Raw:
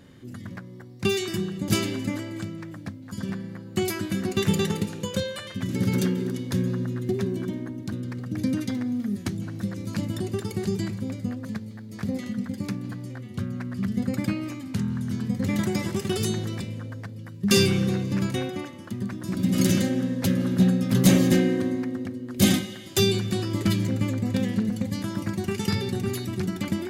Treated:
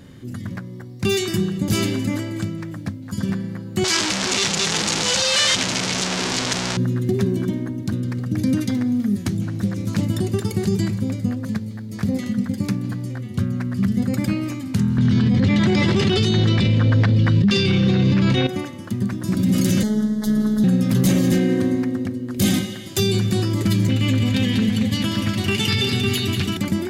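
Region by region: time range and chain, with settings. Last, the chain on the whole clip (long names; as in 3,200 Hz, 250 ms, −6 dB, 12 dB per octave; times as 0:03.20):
0:03.84–0:06.77: sign of each sample alone + low-pass filter 6,600 Hz 24 dB per octave + spectral tilt +3.5 dB per octave
0:09.40–0:10.03: notch filter 4,600 Hz, Q 27 + highs frequency-modulated by the lows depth 0.22 ms
0:14.98–0:18.47: low-pass with resonance 3,700 Hz, resonance Q 1.8 + envelope flattener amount 100%
0:19.83–0:20.64: phases set to zero 213 Hz + Butterworth band-reject 2,500 Hz, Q 2
0:23.89–0:26.57: parametric band 3,000 Hz +14.5 dB 1 octave + notch comb filter 180 Hz + repeating echo 191 ms, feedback 43%, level −7.5 dB
whole clip: bass and treble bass +4 dB, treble +2 dB; brickwall limiter −15 dBFS; level +5 dB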